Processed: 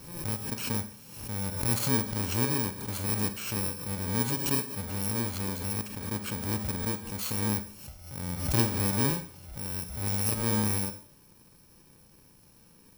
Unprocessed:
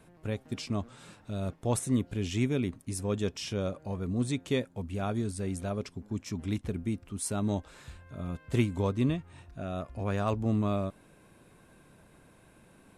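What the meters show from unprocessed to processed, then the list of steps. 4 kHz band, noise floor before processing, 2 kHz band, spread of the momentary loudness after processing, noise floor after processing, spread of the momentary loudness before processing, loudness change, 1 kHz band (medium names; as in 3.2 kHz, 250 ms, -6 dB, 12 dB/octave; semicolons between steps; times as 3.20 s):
+6.0 dB, -60 dBFS, +5.0 dB, 9 LU, -58 dBFS, 10 LU, +3.0 dB, +2.0 dB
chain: bit-reversed sample order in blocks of 64 samples; Schroeder reverb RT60 0.55 s, combs from 30 ms, DRR 9.5 dB; swell ahead of each attack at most 64 dB/s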